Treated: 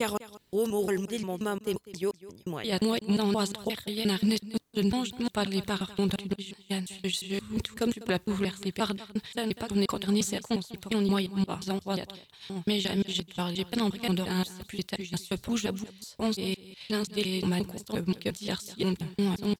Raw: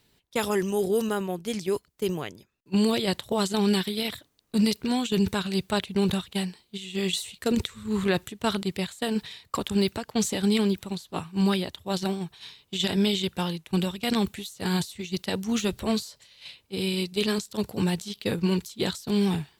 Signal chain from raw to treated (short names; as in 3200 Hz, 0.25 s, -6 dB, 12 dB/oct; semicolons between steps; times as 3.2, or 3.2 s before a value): slices in reverse order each 0.176 s, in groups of 3; echo 0.198 s -17.5 dB; gain -3 dB